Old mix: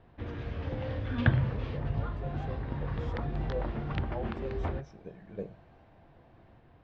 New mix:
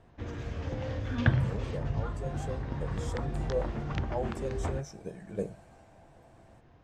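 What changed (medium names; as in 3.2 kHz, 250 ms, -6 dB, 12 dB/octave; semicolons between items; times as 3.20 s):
speech +5.0 dB; master: remove low-pass 4.2 kHz 24 dB/octave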